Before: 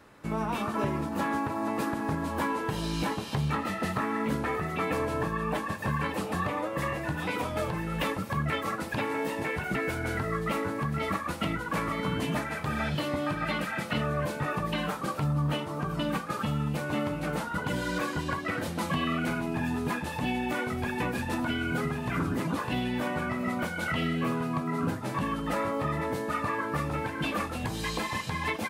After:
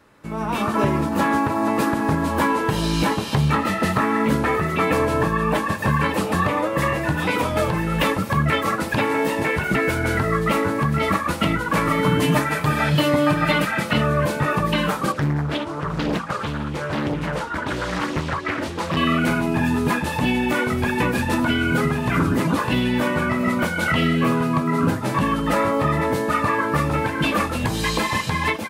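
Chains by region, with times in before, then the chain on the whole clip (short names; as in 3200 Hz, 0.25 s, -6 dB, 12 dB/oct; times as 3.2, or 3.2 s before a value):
11.85–13.65 high shelf 11000 Hz +5.5 dB + comb 6.7 ms, depth 50%
15.12–18.97 LPF 8200 Hz + flange 1 Hz, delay 0.2 ms, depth 3.2 ms, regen +10% + Doppler distortion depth 0.99 ms
whole clip: notch 740 Hz, Q 19; AGC gain up to 10 dB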